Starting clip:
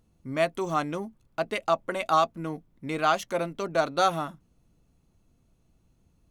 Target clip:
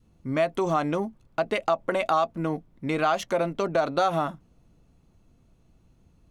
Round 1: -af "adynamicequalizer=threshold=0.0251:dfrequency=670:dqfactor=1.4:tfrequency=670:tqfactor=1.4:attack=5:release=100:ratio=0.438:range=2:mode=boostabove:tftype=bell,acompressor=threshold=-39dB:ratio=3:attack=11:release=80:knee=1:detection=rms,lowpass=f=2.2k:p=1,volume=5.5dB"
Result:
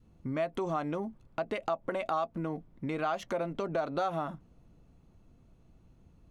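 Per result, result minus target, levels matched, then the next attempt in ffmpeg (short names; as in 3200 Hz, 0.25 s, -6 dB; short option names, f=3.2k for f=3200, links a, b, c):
compressor: peak gain reduction +7.5 dB; 4000 Hz band -3.0 dB
-af "adynamicequalizer=threshold=0.0251:dfrequency=670:dqfactor=1.4:tfrequency=670:tqfactor=1.4:attack=5:release=100:ratio=0.438:range=2:mode=boostabove:tftype=bell,acompressor=threshold=-27.5dB:ratio=3:attack=11:release=80:knee=1:detection=rms,lowpass=f=2.2k:p=1,volume=5.5dB"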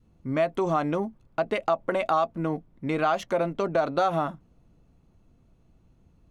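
4000 Hz band -3.0 dB
-af "adynamicequalizer=threshold=0.0251:dfrequency=670:dqfactor=1.4:tfrequency=670:tqfactor=1.4:attack=5:release=100:ratio=0.438:range=2:mode=boostabove:tftype=bell,acompressor=threshold=-27.5dB:ratio=3:attack=11:release=80:knee=1:detection=rms,lowpass=f=4.9k:p=1,volume=5.5dB"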